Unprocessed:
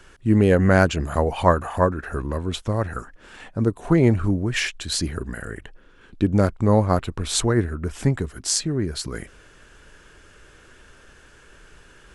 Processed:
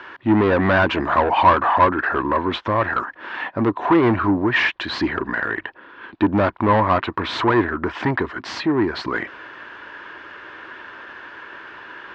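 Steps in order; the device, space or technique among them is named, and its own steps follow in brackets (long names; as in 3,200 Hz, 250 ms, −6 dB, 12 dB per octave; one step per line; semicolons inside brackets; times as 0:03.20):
overdrive pedal into a guitar cabinet (mid-hump overdrive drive 28 dB, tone 1,700 Hz, clips at −1.5 dBFS; loudspeaker in its box 84–4,200 Hz, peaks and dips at 160 Hz −7 dB, 320 Hz +5 dB, 460 Hz −5 dB, 990 Hz +9 dB, 1,800 Hz +5 dB)
level −6.5 dB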